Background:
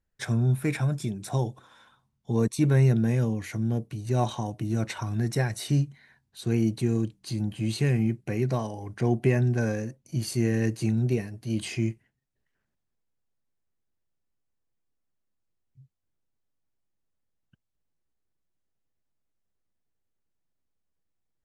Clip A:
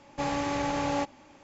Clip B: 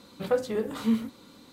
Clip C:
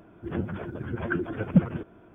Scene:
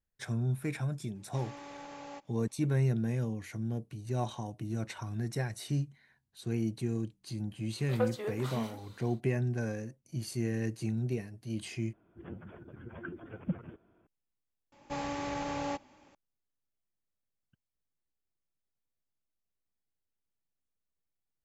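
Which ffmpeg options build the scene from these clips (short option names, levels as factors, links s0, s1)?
-filter_complex "[1:a]asplit=2[s0][s1];[0:a]volume=0.398[s2];[s0]equalizer=f=67:t=o:w=2.2:g=-13.5[s3];[2:a]highpass=440[s4];[s1]aresample=32000,aresample=44100[s5];[s2]asplit=3[s6][s7][s8];[s6]atrim=end=11.934[s9];[3:a]atrim=end=2.14,asetpts=PTS-STARTPTS,volume=0.188[s10];[s7]atrim=start=14.066:end=14.724[s11];[s5]atrim=end=1.43,asetpts=PTS-STARTPTS,volume=0.473[s12];[s8]atrim=start=16.146[s13];[s3]atrim=end=1.43,asetpts=PTS-STARTPTS,volume=0.158,afade=t=in:d=0.004:c=hsin,afade=t=out:st=1.426:d=0.004:c=hsin,adelay=1150[s14];[s4]atrim=end=1.52,asetpts=PTS-STARTPTS,volume=0.631,afade=t=in:d=0.1,afade=t=out:st=1.42:d=0.1,adelay=7690[s15];[s9][s10]acrossfade=d=0.004:c1=hsin:c2=hsin[s16];[s16][s11]acrossfade=d=0.004:c1=hsin:c2=hsin[s17];[s17][s12]acrossfade=d=0.004:c1=hsin:c2=hsin[s18];[s18][s13]acrossfade=d=0.004:c1=hsin:c2=hsin[s19];[s19][s14][s15]amix=inputs=3:normalize=0"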